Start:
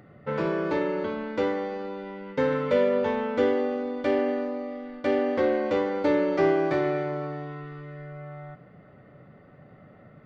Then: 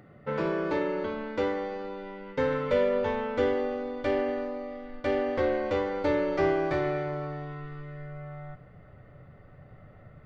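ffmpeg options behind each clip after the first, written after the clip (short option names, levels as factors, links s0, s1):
-af "asubboost=boost=8.5:cutoff=73,volume=0.841"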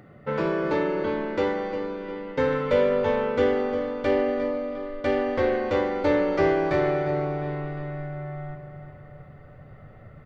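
-filter_complex "[0:a]asplit=2[s0][s1];[s1]adelay=354,lowpass=f=4400:p=1,volume=0.335,asplit=2[s2][s3];[s3]adelay=354,lowpass=f=4400:p=1,volume=0.55,asplit=2[s4][s5];[s5]adelay=354,lowpass=f=4400:p=1,volume=0.55,asplit=2[s6][s7];[s7]adelay=354,lowpass=f=4400:p=1,volume=0.55,asplit=2[s8][s9];[s9]adelay=354,lowpass=f=4400:p=1,volume=0.55,asplit=2[s10][s11];[s11]adelay=354,lowpass=f=4400:p=1,volume=0.55[s12];[s0][s2][s4][s6][s8][s10][s12]amix=inputs=7:normalize=0,volume=1.5"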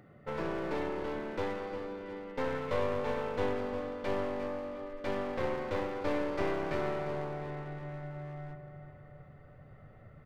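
-af "aeval=exprs='clip(val(0),-1,0.0237)':c=same,volume=0.422"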